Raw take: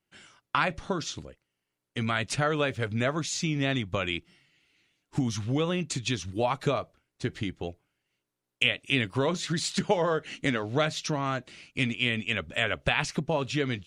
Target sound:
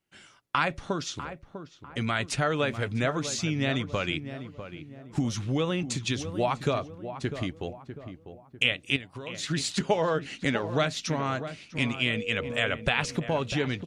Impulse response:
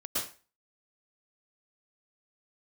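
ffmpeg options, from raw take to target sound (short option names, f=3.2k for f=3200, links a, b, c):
-filter_complex "[0:a]asettb=1/sr,asplit=3[a][b][c];[a]atrim=end=8.964[d];[b]atrim=start=8.96:end=9.38,asetpts=PTS-STARTPTS,afade=t=in:d=0.004:c=qsin,afade=t=out:st=0.416:d=0.004:c=qsin,acompressor=threshold=-37dB:ratio=12[e];[c]atrim=start=9.376[f];[d][e]acrossfade=d=0.004:c1=hsin:c2=qsin[g];[g][f]acrossfade=d=0.004:c1=qsin:c2=hsin,asettb=1/sr,asplit=3[h][i][j];[h]atrim=end=12.144[k];[i]atrim=start=12.14:end=12.7,asetpts=PTS-STARTPTS,afade=t=in:d=0.004:c=qsin,afade=t=out:st=0.556:d=0.004:c=qsin,aeval=exprs='val(0)+0.02*sin(2*PI*480*n/s)':c=same[l];[j]atrim=start=12.696[m];[k][l]acrossfade=d=0.004:c1=hsin:c2=qsin[n];[n][m]acrossfade=d=0.004:c1=qsin:c2=hsin,asplit=2[o][p];[p]adelay=648,lowpass=f=1.3k:p=1,volume=-10dB,asplit=2[q][r];[r]adelay=648,lowpass=f=1.3k:p=1,volume=0.44,asplit=2[s][t];[t]adelay=648,lowpass=f=1.3k:p=1,volume=0.44,asplit=2[u][v];[v]adelay=648,lowpass=f=1.3k:p=1,volume=0.44,asplit=2[w][x];[x]adelay=648,lowpass=f=1.3k:p=1,volume=0.44[y];[q][s][u][w][y]amix=inputs=5:normalize=0[z];[o][z]amix=inputs=2:normalize=0"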